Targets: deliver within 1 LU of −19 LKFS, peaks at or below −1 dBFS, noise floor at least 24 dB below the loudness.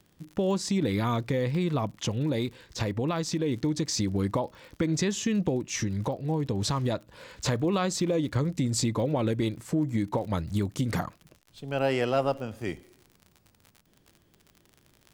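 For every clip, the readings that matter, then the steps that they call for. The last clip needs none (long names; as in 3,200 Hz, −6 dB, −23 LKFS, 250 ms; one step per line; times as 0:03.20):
crackle rate 55 per second; integrated loudness −29.0 LKFS; sample peak −14.5 dBFS; target loudness −19.0 LKFS
→ click removal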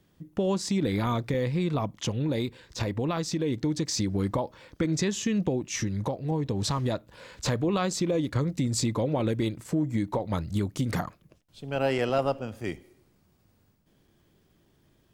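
crackle rate 0.79 per second; integrated loudness −29.0 LKFS; sample peak −14.5 dBFS; target loudness −19.0 LKFS
→ level +10 dB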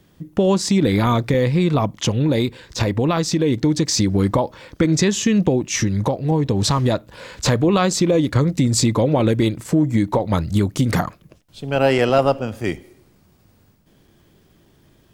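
integrated loudness −19.0 LKFS; sample peak −4.5 dBFS; background noise floor −56 dBFS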